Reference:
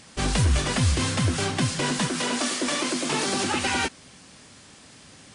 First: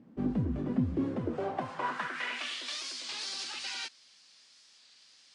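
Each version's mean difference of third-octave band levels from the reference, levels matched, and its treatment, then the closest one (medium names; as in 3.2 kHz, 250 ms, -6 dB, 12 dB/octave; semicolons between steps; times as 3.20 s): 11.0 dB: in parallel at -9 dB: saturation -23 dBFS, distortion -11 dB; on the sum: band-pass sweep 250 Hz -> 4.7 kHz, 0.93–2.79 s; treble shelf 3.3 kHz -9.5 dB; warped record 33 1/3 rpm, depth 100 cents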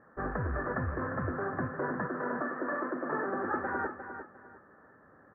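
14.5 dB: rattle on loud lows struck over -24 dBFS, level -21 dBFS; rippled Chebyshev low-pass 1.8 kHz, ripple 6 dB; bass shelf 360 Hz -9 dB; feedback delay 352 ms, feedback 26%, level -9.5 dB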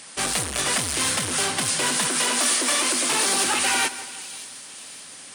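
7.0 dB: overload inside the chain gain 23.5 dB; high-pass 690 Hz 6 dB/octave; peaking EQ 9.3 kHz +9.5 dB 0.33 oct; on a send: two-band feedback delay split 2.9 kHz, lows 171 ms, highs 570 ms, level -15 dB; on the sum: trim +6 dB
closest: third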